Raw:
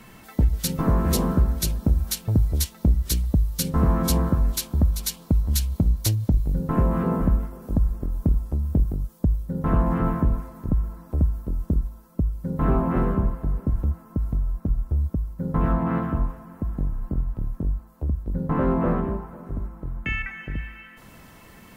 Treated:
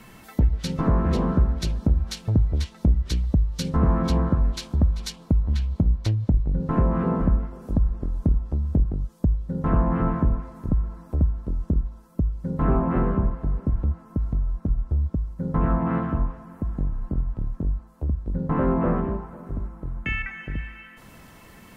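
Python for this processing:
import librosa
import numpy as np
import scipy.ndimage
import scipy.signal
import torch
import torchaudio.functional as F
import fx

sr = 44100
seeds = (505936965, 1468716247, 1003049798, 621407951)

y = fx.env_lowpass_down(x, sr, base_hz=2600.0, full_db=-17.0)
y = fx.high_shelf(y, sr, hz=4300.0, db=-8.0, at=(5.12, 6.6))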